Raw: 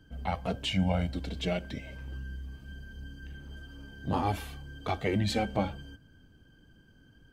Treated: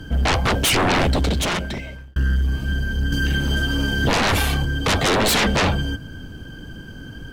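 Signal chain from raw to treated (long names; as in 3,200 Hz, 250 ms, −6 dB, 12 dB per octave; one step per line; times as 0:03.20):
sine wavefolder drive 19 dB, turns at −14.5 dBFS
0:01.11–0:02.16: fade out
0:03.12–0:04.65: multiband upward and downward compressor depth 70%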